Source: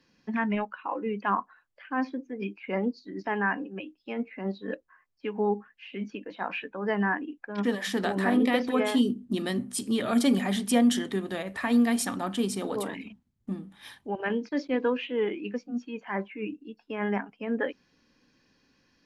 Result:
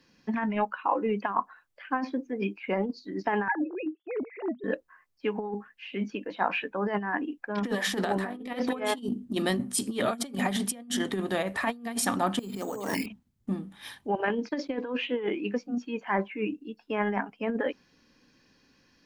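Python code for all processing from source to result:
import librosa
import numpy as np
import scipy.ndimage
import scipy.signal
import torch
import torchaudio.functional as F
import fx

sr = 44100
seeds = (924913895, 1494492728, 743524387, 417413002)

y = fx.chain(x, sr, fx.sine_speech(),
    fx.lowpass(hz=1300.0, slope=6), at=(3.48, 4.64))
y = fx.chain(y, sr, fx.over_compress(threshold_db=-38.0, ratio=-1.0),
    fx.resample_bad(factor=6, down='filtered', up='hold'), at=(12.39, 13.06))
y = fx.high_shelf(y, sr, hz=6600.0, db=2.5)
y = fx.over_compress(y, sr, threshold_db=-29.0, ratio=-0.5)
y = fx.dynamic_eq(y, sr, hz=840.0, q=0.95, threshold_db=-41.0, ratio=4.0, max_db=4)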